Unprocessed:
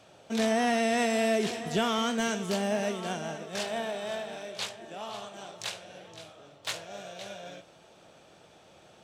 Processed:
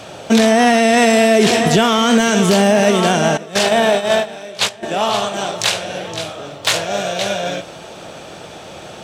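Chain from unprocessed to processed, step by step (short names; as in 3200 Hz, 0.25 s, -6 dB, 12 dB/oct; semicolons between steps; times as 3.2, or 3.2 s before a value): 3.37–4.83 gate -34 dBFS, range -13 dB; maximiser +24.5 dB; gain -2.5 dB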